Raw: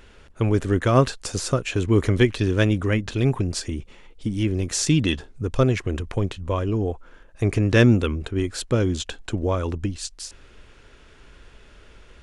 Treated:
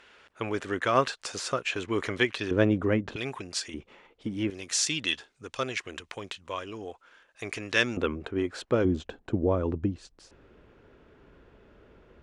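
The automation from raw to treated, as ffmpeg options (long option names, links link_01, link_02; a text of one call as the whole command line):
ffmpeg -i in.wav -af "asetnsamples=nb_out_samples=441:pad=0,asendcmd='2.51 bandpass f 520;3.16 bandpass f 2900;3.74 bandpass f 910;4.5 bandpass f 3500;7.97 bandpass f 810;8.85 bandpass f 310',bandpass=frequency=1900:width_type=q:width=0.51:csg=0" out.wav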